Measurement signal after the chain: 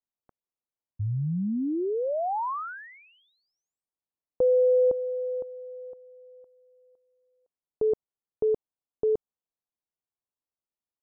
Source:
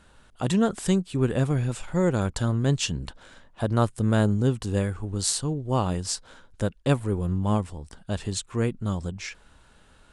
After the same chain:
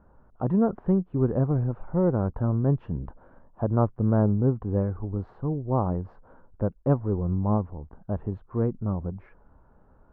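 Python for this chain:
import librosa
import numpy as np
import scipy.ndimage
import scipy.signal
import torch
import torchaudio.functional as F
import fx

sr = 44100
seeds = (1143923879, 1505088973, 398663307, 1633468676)

y = scipy.signal.sosfilt(scipy.signal.butter(4, 1100.0, 'lowpass', fs=sr, output='sos'), x)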